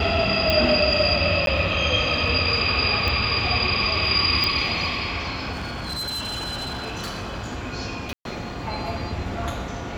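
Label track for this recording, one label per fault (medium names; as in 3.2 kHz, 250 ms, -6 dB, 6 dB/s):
0.500000	0.500000	pop -7 dBFS
1.460000	1.470000	dropout 12 ms
3.080000	3.080000	pop -11 dBFS
4.440000	4.440000	pop -8 dBFS
5.520000	7.570000	clipped -26 dBFS
8.130000	8.250000	dropout 122 ms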